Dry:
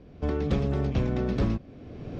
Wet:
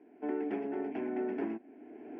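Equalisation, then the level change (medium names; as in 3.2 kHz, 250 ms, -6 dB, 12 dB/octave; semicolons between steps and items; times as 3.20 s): high-pass 260 Hz 24 dB/octave; distance through air 470 m; static phaser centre 790 Hz, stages 8; 0.0 dB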